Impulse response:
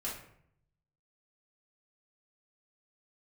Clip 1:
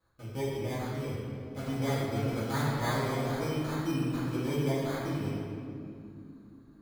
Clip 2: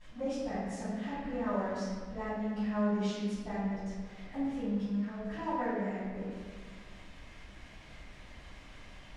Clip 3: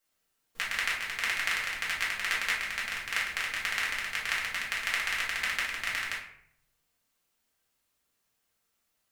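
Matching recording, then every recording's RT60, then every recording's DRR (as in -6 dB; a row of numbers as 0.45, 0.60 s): 3; 2.6, 1.5, 0.65 s; -12.5, -14.0, -6.5 dB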